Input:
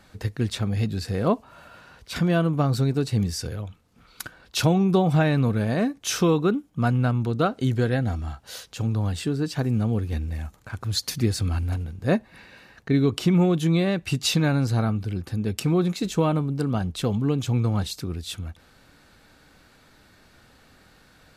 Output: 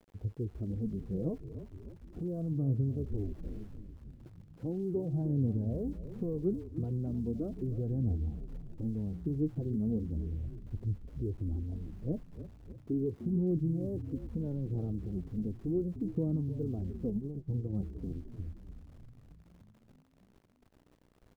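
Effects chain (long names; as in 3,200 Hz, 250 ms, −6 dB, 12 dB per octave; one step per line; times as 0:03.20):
0:03.05–0:03.67: lower of the sound and its delayed copy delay 2.8 ms
low-shelf EQ 66 Hz +5.5 dB
brickwall limiter −16 dBFS, peak gain reduction 7.5 dB
flanger 0.37 Hz, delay 0.2 ms, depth 6.4 ms, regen +25%
mains hum 60 Hz, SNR 31 dB
transistor ladder low-pass 500 Hz, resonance 30%
centre clipping without the shift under −58 dBFS
echo with shifted repeats 302 ms, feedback 65%, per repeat −47 Hz, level −11 dB
0:17.10–0:17.73: expander for the loud parts 2.5 to 1, over −41 dBFS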